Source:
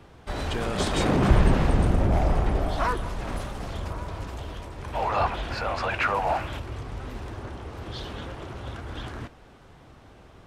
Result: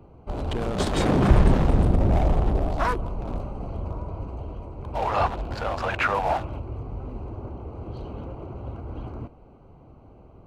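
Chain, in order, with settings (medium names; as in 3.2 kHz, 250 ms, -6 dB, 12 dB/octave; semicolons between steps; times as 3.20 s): local Wiener filter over 25 samples; trim +2 dB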